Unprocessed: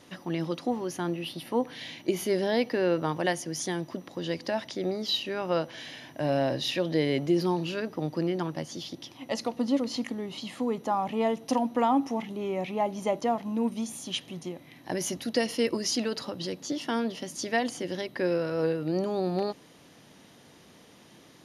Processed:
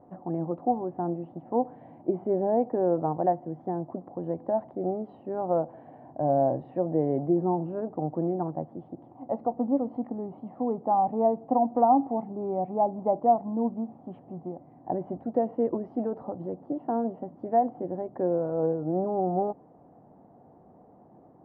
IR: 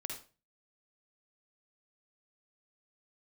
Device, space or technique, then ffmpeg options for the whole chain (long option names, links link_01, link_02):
under water: -af "lowpass=frequency=920:width=0.5412,lowpass=frequency=920:width=1.3066,equalizer=frequency=740:width_type=o:width=0.35:gain=10"